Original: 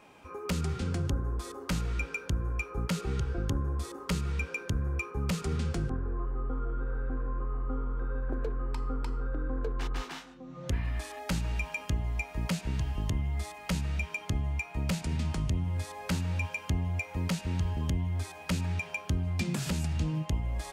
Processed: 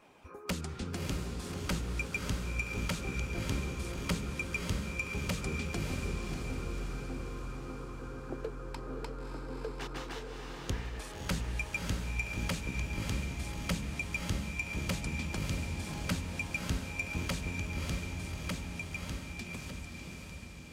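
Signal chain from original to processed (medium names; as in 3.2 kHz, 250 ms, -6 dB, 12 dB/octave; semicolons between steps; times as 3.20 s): fade out at the end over 3.41 s; harmonic-percussive split harmonic -10 dB; echo that smears into a reverb 597 ms, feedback 60%, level -3 dB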